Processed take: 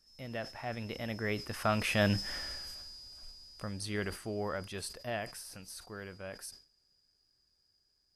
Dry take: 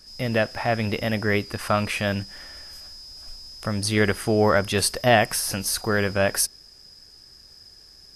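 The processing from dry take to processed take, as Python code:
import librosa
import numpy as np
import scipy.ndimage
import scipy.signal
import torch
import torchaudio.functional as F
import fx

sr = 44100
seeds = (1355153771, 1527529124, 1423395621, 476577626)

y = fx.doppler_pass(x, sr, speed_mps=10, closest_m=2.3, pass_at_s=2.34)
y = fx.sustainer(y, sr, db_per_s=140.0)
y = y * 10.0 ** (1.5 / 20.0)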